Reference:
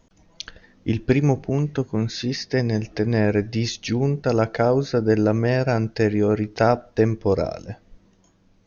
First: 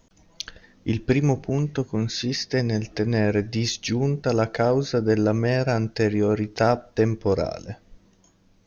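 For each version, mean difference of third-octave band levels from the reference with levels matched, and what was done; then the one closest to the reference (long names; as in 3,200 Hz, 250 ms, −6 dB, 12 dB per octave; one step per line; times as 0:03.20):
1.5 dB: in parallel at −11 dB: soft clipping −20 dBFS, distortion −8 dB
on the sum: high-shelf EQ 4,400 Hz +6 dB
level −3 dB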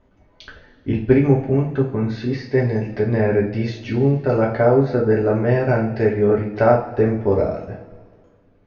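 5.5 dB: low-pass filter 2,100 Hz 12 dB per octave
coupled-rooms reverb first 0.4 s, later 1.9 s, from −17 dB, DRR −3 dB
level −1.5 dB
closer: first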